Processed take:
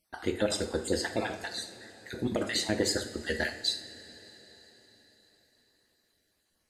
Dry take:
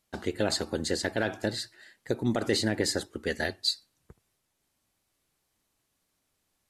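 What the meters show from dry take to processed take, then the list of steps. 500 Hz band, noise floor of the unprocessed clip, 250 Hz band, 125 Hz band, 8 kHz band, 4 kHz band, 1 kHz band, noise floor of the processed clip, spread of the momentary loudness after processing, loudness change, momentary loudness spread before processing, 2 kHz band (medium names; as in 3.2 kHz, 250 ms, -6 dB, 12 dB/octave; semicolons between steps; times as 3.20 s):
-1.5 dB, -78 dBFS, -2.5 dB, -4.5 dB, -0.5 dB, -1.5 dB, -1.5 dB, -76 dBFS, 18 LU, -1.5 dB, 9 LU, -1.0 dB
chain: random holes in the spectrogram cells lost 34%; two-slope reverb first 0.48 s, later 4.9 s, from -18 dB, DRR 4.5 dB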